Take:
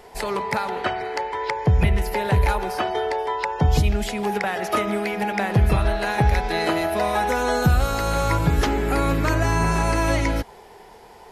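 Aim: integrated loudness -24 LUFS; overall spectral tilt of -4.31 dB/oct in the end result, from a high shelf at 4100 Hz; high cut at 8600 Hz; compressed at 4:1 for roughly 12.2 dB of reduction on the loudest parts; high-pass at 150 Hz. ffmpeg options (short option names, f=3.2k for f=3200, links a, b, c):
-af "highpass=150,lowpass=8.6k,highshelf=f=4.1k:g=-7,acompressor=threshold=-32dB:ratio=4,volume=10dB"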